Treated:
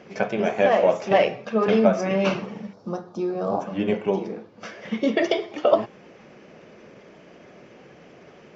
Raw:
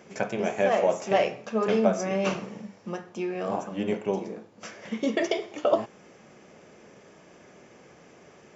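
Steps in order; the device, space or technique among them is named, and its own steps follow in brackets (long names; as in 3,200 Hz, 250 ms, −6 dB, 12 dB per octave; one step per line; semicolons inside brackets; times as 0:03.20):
clip after many re-uploads (low-pass filter 5,100 Hz 24 dB per octave; spectral magnitudes quantised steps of 15 dB)
0:02.73–0:03.61: flat-topped bell 2,300 Hz −15.5 dB 1.1 octaves
level +5 dB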